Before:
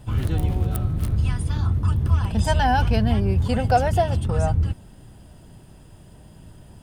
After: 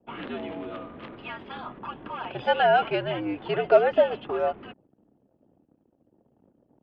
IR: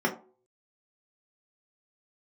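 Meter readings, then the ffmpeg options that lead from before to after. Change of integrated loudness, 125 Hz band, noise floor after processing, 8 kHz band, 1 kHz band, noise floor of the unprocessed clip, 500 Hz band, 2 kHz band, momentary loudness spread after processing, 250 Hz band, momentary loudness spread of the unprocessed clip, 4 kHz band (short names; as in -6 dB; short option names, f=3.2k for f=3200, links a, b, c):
-3.5 dB, -24.0 dB, -69 dBFS, under -35 dB, -2.5 dB, -47 dBFS, +3.5 dB, +0.5 dB, 19 LU, -8.5 dB, 5 LU, -1.5 dB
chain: -af "anlmdn=0.1,crystalizer=i=0.5:c=0,highpass=f=350:t=q:w=0.5412,highpass=f=350:t=q:w=1.307,lowpass=f=3.3k:t=q:w=0.5176,lowpass=f=3.3k:t=q:w=0.7071,lowpass=f=3.3k:t=q:w=1.932,afreqshift=-81,volume=1.5dB"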